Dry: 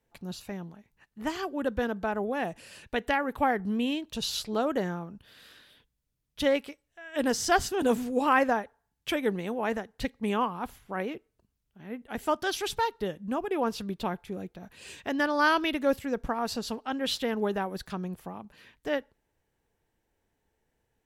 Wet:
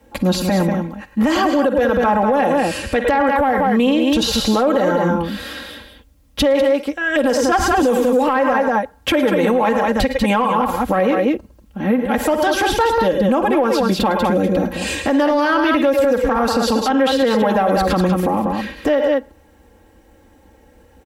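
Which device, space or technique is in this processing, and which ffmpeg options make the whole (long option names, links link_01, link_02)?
mastering chain: -filter_complex "[0:a]highpass=45,tiltshelf=frequency=1100:gain=5,equalizer=frequency=200:width_type=o:width=0.77:gain=-2.5,aecho=1:1:3.7:0.87,aecho=1:1:47|59|106|108|191:0.112|0.126|0.188|0.141|0.398,acrossover=split=410|2300[link_01][link_02][link_03];[link_01]acompressor=threshold=-36dB:ratio=4[link_04];[link_02]acompressor=threshold=-23dB:ratio=4[link_05];[link_03]acompressor=threshold=-43dB:ratio=4[link_06];[link_04][link_05][link_06]amix=inputs=3:normalize=0,acompressor=threshold=-32dB:ratio=2,asoftclip=type=tanh:threshold=-21.5dB,alimiter=level_in=30dB:limit=-1dB:release=50:level=0:latency=1,volume=-7.5dB"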